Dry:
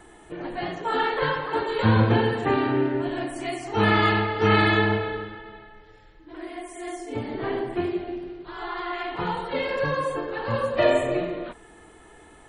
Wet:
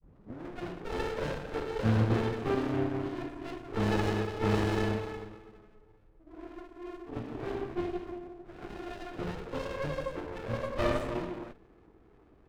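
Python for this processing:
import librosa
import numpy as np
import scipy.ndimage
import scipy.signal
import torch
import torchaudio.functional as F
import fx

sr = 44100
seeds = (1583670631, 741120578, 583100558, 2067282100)

y = fx.tape_start_head(x, sr, length_s=0.44)
y = fx.env_lowpass(y, sr, base_hz=770.0, full_db=-18.5)
y = fx.running_max(y, sr, window=33)
y = y * 10.0 ** (-6.5 / 20.0)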